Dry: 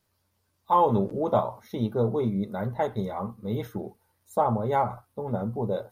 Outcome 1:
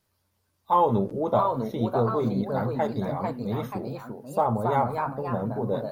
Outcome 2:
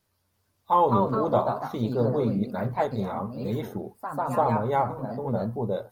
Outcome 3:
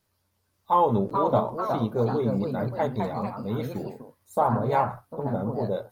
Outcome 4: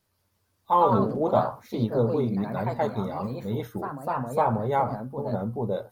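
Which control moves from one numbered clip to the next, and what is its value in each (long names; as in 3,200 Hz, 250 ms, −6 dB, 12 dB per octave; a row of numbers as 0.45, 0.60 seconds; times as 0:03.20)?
delay with pitch and tempo change per echo, delay time: 752, 282, 511, 176 milliseconds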